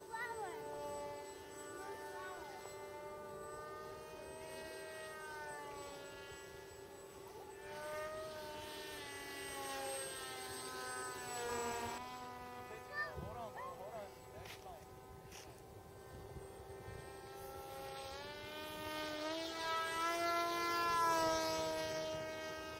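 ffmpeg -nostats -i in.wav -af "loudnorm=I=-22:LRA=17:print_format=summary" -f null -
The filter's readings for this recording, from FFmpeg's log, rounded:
Input Integrated:    -42.4 LUFS
Input True Peak:     -24.1 dBTP
Input LRA:            12.4 LU
Input Threshold:     -52.9 LUFS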